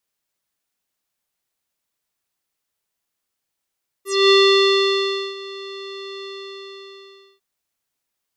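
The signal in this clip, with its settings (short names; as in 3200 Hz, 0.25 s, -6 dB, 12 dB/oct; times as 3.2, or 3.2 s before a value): synth note square G4 12 dB/oct, low-pass 3900 Hz, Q 8.9, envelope 2 oct, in 0.11 s, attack 0.245 s, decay 1.05 s, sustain -21 dB, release 1.16 s, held 2.19 s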